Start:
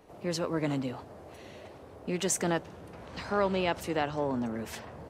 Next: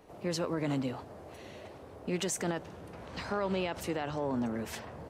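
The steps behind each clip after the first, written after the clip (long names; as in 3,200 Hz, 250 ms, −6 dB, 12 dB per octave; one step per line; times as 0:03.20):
brickwall limiter −23.5 dBFS, peak gain reduction 8.5 dB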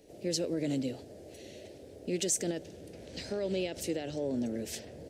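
drawn EQ curve 180 Hz 0 dB, 320 Hz +5 dB, 590 Hz +3 dB, 1,100 Hz −21 dB, 1,700 Hz −4 dB, 5,000 Hz +8 dB, 7,700 Hz +9 dB, 13,000 Hz +5 dB
level −3 dB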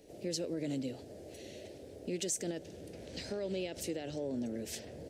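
downward compressor 1.5 to 1, threshold −41 dBFS, peak gain reduction 6 dB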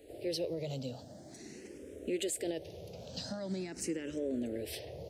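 frequency shifter mixed with the dry sound +0.45 Hz
level +4 dB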